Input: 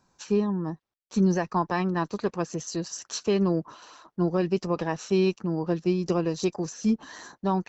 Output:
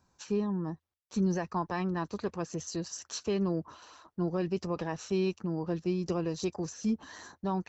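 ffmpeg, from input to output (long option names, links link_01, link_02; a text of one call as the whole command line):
ffmpeg -i in.wav -filter_complex "[0:a]asplit=2[link_01][link_02];[link_02]alimiter=limit=-23dB:level=0:latency=1:release=24,volume=-3dB[link_03];[link_01][link_03]amix=inputs=2:normalize=0,equalizer=frequency=81:width_type=o:width=0.5:gain=13.5,volume=-9dB" out.wav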